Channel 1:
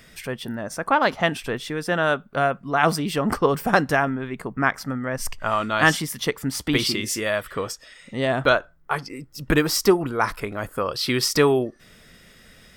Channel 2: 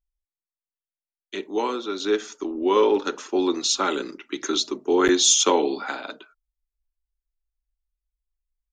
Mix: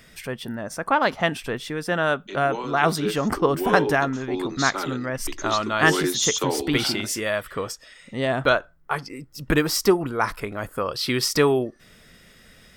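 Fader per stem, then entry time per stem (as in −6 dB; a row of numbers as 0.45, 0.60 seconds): −1.0, −6.0 decibels; 0.00, 0.95 seconds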